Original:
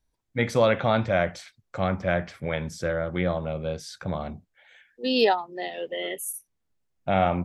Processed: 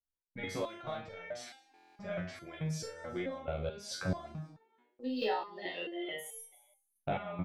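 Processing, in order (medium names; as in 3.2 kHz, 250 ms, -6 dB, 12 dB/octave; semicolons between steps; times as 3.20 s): de-esser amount 70%; gate -49 dBFS, range -27 dB; compression 6:1, threshold -34 dBFS, peak gain reduction 17 dB; doubling 40 ms -4.5 dB; frequency-shifting echo 183 ms, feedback 44%, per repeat +74 Hz, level -20 dB; buffer glitch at 1.69 s, samples 1024, times 12; resonator arpeggio 4.6 Hz 71–450 Hz; trim +10 dB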